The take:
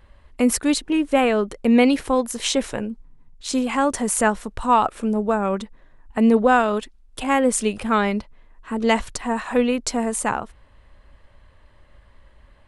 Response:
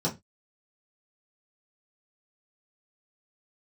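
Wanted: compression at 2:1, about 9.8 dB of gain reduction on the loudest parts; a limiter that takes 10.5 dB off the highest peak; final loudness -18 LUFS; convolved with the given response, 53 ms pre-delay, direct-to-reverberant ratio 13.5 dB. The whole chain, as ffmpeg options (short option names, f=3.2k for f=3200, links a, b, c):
-filter_complex "[0:a]acompressor=threshold=-30dB:ratio=2,alimiter=limit=-22.5dB:level=0:latency=1,asplit=2[a][b];[1:a]atrim=start_sample=2205,adelay=53[c];[b][c]afir=irnorm=-1:irlink=0,volume=-22dB[d];[a][d]amix=inputs=2:normalize=0,volume=14dB"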